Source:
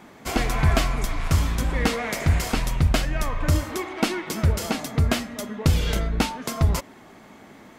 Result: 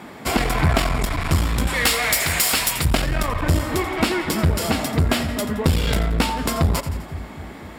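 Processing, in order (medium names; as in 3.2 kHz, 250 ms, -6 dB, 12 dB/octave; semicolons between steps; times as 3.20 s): 1.67–2.85 s: tilt EQ +4 dB/octave; on a send: two-band feedback delay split 320 Hz, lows 252 ms, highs 85 ms, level -14.5 dB; on the sum: one-sided clip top -25 dBFS; high-pass 45 Hz; in parallel at +1 dB: compression, threshold -28 dBFS, peak gain reduction 11 dB; on the sum: band-stop 6.2 kHz, Q 6.1; trim +2 dB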